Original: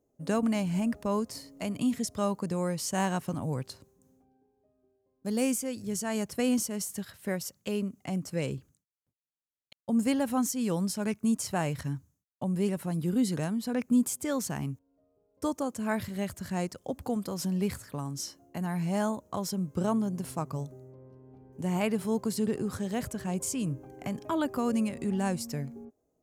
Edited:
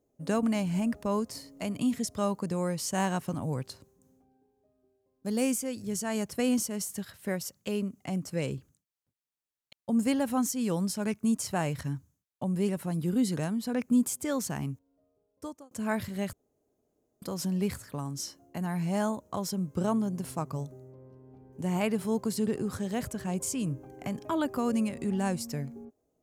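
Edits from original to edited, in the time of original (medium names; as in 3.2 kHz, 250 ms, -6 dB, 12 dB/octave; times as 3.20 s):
14.62–15.71 s: fade out equal-power
16.33–17.22 s: room tone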